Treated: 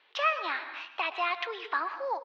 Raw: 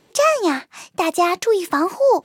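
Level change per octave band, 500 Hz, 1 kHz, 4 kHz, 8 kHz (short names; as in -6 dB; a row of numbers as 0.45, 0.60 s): -20.0 dB, -10.5 dB, -7.5 dB, under -30 dB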